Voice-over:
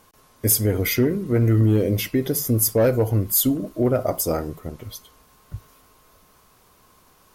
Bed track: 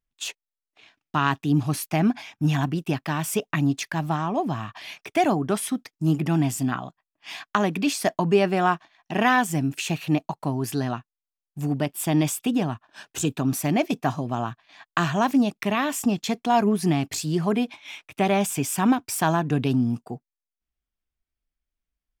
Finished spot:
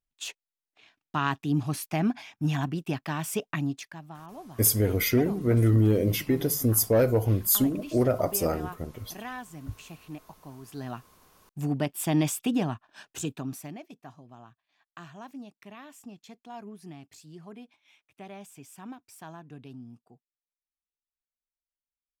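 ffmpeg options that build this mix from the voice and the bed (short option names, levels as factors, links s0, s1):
-filter_complex "[0:a]adelay=4150,volume=0.668[s0];[1:a]volume=3.55,afade=t=out:st=3.49:d=0.53:silence=0.199526,afade=t=in:st=10.66:d=0.59:silence=0.158489,afade=t=out:st=12.75:d=1.05:silence=0.105925[s1];[s0][s1]amix=inputs=2:normalize=0"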